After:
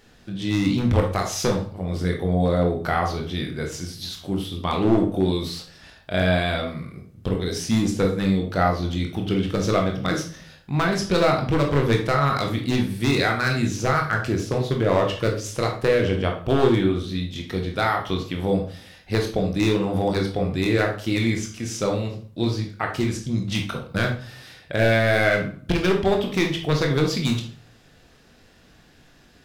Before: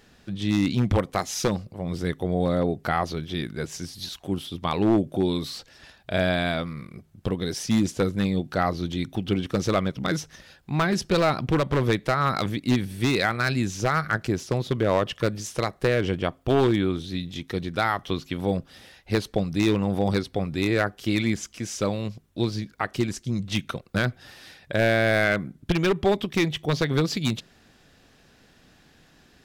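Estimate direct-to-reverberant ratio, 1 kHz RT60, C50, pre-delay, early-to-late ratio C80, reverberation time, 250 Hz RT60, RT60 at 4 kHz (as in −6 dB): 1.5 dB, 0.50 s, 6.5 dB, 21 ms, 12.5 dB, 0.45 s, 0.55 s, 0.40 s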